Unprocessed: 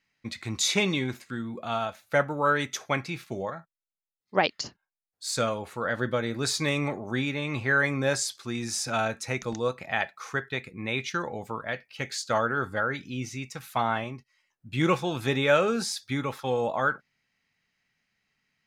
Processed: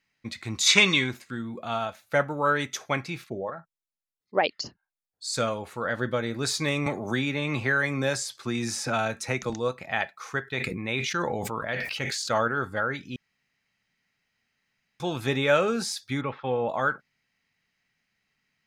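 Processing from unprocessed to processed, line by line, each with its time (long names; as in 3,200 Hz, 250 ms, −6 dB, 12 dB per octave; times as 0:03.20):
0:00.67–0:01.08: gain on a spectral selection 980–8,700 Hz +9 dB
0:03.24–0:05.34: spectral envelope exaggerated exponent 1.5
0:06.86–0:09.50: multiband upward and downward compressor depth 70%
0:10.44–0:12.48: level that may fall only so fast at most 21 dB per second
0:13.16–0:15.00: fill with room tone
0:16.21–0:16.69: low-pass filter 3,000 Hz 24 dB per octave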